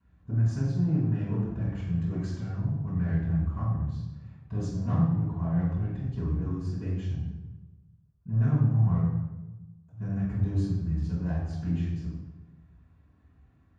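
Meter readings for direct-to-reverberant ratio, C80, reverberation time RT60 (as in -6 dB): -14.5 dB, 3.0 dB, 1.1 s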